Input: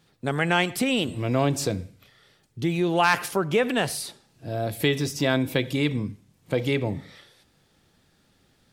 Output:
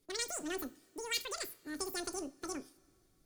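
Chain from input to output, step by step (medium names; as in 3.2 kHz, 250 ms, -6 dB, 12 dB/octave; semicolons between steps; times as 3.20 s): wide varispeed 2.68×; amplifier tone stack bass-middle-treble 10-0-1; two-slope reverb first 0.31 s, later 2.9 s, from -22 dB, DRR 12.5 dB; trim +9 dB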